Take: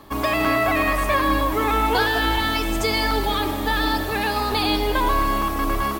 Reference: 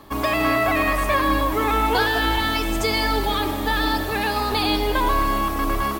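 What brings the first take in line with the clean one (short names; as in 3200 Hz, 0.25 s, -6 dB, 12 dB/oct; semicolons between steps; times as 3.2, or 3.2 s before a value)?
interpolate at 0.45/3.11/5.42, 3.6 ms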